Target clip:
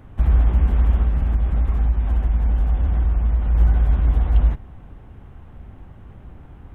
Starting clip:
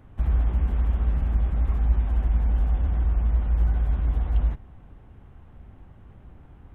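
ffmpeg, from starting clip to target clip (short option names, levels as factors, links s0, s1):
-filter_complex "[0:a]asettb=1/sr,asplit=3[s0][s1][s2];[s0]atrim=end=1.024[s3];[s1]atrim=start=1.02:end=3.55,asetpts=PTS-STARTPTS,afade=t=in:d=0.004:c=qsin,afade=t=out:st=2.526:d=0.004:c=qsin,acompressor=threshold=0.0891:ratio=6[s4];[s2]atrim=start=3.546[s5];[s3][s4]acrossfade=d=0.004:c1=hsin:c2=qsin[s6];[s6][s5]acrossfade=d=0.004:c1=qsin:c2=hsin,volume=2.11"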